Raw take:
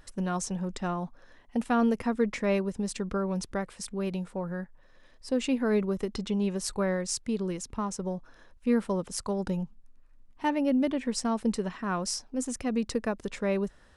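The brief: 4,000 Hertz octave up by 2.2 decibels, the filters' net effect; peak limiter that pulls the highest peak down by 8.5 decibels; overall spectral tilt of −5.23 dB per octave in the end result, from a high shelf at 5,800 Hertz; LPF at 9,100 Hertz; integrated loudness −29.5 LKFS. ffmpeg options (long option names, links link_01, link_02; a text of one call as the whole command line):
ffmpeg -i in.wav -af "lowpass=9100,equalizer=frequency=4000:width_type=o:gain=8,highshelf=frequency=5800:gain=-9,volume=4dB,alimiter=limit=-19dB:level=0:latency=1" out.wav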